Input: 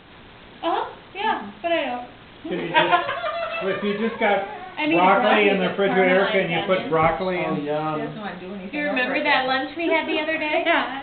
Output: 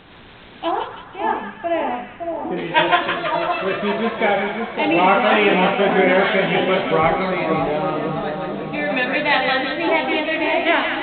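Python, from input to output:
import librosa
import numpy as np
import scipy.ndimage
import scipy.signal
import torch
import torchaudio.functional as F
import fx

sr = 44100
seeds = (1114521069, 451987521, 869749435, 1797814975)

p1 = fx.lowpass(x, sr, hz=1700.0, slope=12, at=(0.71, 2.57))
p2 = p1 + fx.echo_split(p1, sr, split_hz=1200.0, low_ms=561, high_ms=164, feedback_pct=52, wet_db=-5, dry=0)
y = p2 * 10.0 ** (1.5 / 20.0)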